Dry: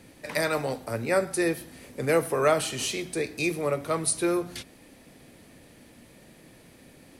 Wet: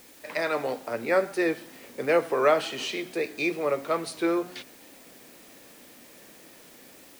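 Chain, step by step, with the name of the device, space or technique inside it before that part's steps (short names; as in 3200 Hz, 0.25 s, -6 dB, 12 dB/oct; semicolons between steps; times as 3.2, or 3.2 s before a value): dictaphone (BPF 280–3900 Hz; AGC gain up to 4 dB; wow and flutter; white noise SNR 24 dB); gain -2.5 dB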